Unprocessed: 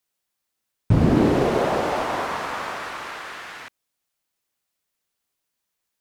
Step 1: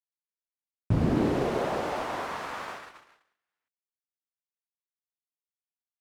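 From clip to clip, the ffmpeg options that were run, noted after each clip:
-af "agate=range=-44dB:threshold=-30dB:ratio=16:detection=peak,volume=-7.5dB"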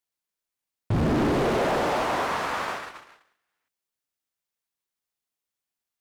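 -af "volume=28.5dB,asoftclip=hard,volume=-28.5dB,volume=8dB"

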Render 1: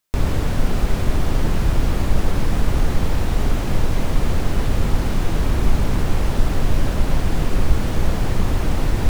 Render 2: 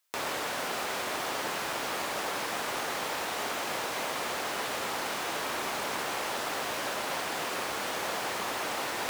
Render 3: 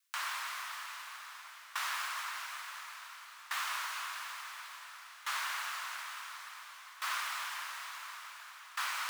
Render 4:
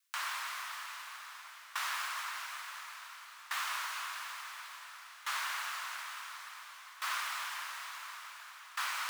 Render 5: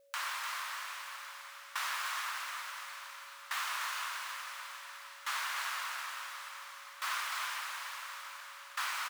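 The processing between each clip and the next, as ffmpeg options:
-af "highpass=690"
-af "lowshelf=f=410:t=q:w=1.5:g=-6.5,afreqshift=490,aeval=exprs='val(0)*pow(10,-19*if(lt(mod(0.57*n/s,1),2*abs(0.57)/1000),1-mod(0.57*n/s,1)/(2*abs(0.57)/1000),(mod(0.57*n/s,1)-2*abs(0.57)/1000)/(1-2*abs(0.57)/1000))/20)':c=same,volume=-2dB"
-af anull
-filter_complex "[0:a]aeval=exprs='val(0)+0.000708*sin(2*PI*560*n/s)':c=same,asplit=2[a][b];[b]aecho=0:1:299:0.501[c];[a][c]amix=inputs=2:normalize=0"

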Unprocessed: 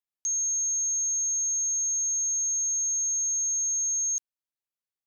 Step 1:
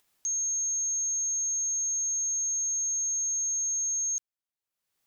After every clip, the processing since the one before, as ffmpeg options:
-af "acompressor=mode=upward:threshold=-51dB:ratio=2.5,volume=-2dB"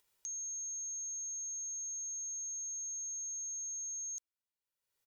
-af "aecho=1:1:2.1:0.5,volume=-6dB"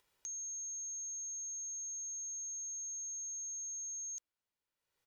-af "highshelf=f=5.3k:g=-11,volume=5dB"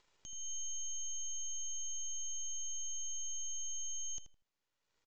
-filter_complex "[0:a]alimiter=level_in=19dB:limit=-24dB:level=0:latency=1:release=472,volume=-19dB,aresample=16000,aeval=exprs='max(val(0),0)':c=same,aresample=44100,asplit=2[a][b];[b]adelay=80,lowpass=f=2k:p=1,volume=-7dB,asplit=2[c][d];[d]adelay=80,lowpass=f=2k:p=1,volume=0.27,asplit=2[e][f];[f]adelay=80,lowpass=f=2k:p=1,volume=0.27[g];[a][c][e][g]amix=inputs=4:normalize=0,volume=8dB"

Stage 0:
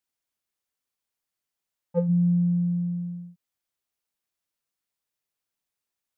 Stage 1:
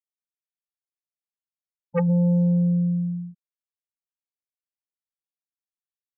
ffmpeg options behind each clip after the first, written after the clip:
-af "afftfilt=real='re*gte(hypot(re,im),0.0224)':imag='im*gte(hypot(re,im),0.0224)':win_size=1024:overlap=0.75,aeval=exprs='0.224*(cos(1*acos(clip(val(0)/0.224,-1,1)))-cos(1*PI/2))+0.0501*(cos(5*acos(clip(val(0)/0.224,-1,1)))-cos(5*PI/2))':c=same"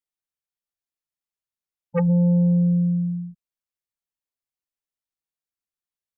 -af "lowshelf=f=95:g=7.5"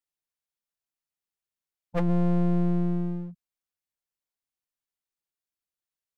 -af "acontrast=74,aeval=exprs='clip(val(0),-1,0.0299)':c=same,volume=-8dB"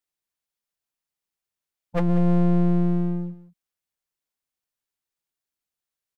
-af "aecho=1:1:189:0.178,volume=3dB"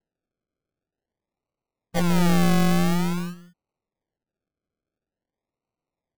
-af "acrusher=samples=37:mix=1:aa=0.000001:lfo=1:lforange=22.2:lforate=0.48"

